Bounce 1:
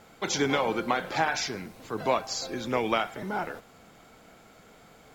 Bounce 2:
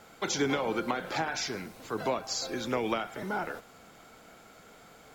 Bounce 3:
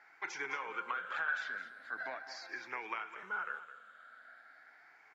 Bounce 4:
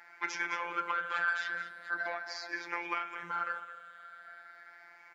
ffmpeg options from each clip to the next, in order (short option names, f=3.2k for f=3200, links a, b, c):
-filter_complex "[0:a]equalizer=f=1.4k:t=o:w=0.25:g=3,acrossover=split=440[a][b];[b]acompressor=threshold=-30dB:ratio=6[c];[a][c]amix=inputs=2:normalize=0,bass=f=250:g=-3,treble=f=4k:g=2"
-af "afftfilt=real='re*pow(10,11/40*sin(2*PI*(0.75*log(max(b,1)*sr/1024/100)/log(2)-(0.41)*(pts-256)/sr)))':imag='im*pow(10,11/40*sin(2*PI*(0.75*log(max(b,1)*sr/1024/100)/log(2)-(0.41)*(pts-256)/sr)))':win_size=1024:overlap=0.75,bandpass=f=1.6k:t=q:w=4.3:csg=0,aecho=1:1:211:0.224,volume=2.5dB"
-filter_complex "[0:a]asplit=2[a][b];[b]asoftclip=type=tanh:threshold=-32dB,volume=-9dB[c];[a][c]amix=inputs=2:normalize=0,afftfilt=real='hypot(re,im)*cos(PI*b)':imag='0':win_size=1024:overlap=0.75,volume=6.5dB"